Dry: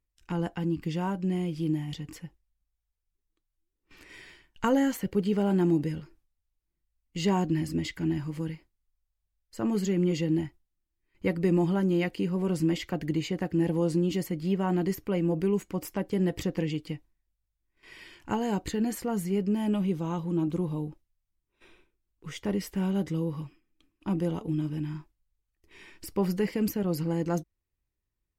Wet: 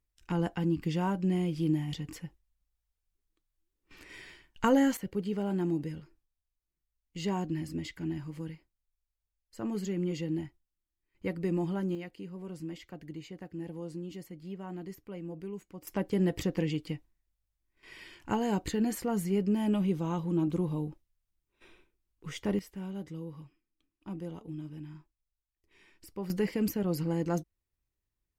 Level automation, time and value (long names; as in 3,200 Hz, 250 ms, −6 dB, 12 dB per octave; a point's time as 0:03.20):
0 dB
from 0:04.97 −6.5 dB
from 0:11.95 −14 dB
from 0:15.87 −1 dB
from 0:22.59 −11 dB
from 0:26.30 −2 dB